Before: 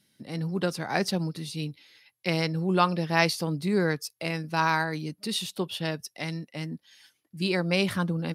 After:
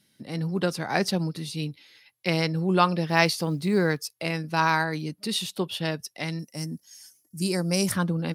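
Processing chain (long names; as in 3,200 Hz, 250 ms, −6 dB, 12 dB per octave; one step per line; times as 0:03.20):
0:03.07–0:04.04: log-companded quantiser 8 bits
0:06.39–0:07.92: drawn EQ curve 190 Hz 0 dB, 3,800 Hz −10 dB, 5,600 Hz +13 dB
level +2 dB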